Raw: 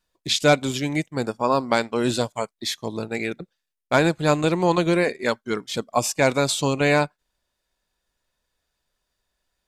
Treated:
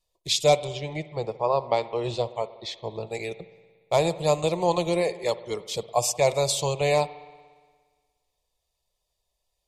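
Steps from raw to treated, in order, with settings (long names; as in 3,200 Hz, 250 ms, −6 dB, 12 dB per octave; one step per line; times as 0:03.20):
0:00.64–0:03.07: low-pass filter 3,200 Hz 12 dB per octave
phaser with its sweep stopped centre 630 Hz, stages 4
spring reverb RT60 1.6 s, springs 58 ms, chirp 45 ms, DRR 15 dB
MP3 56 kbit/s 48,000 Hz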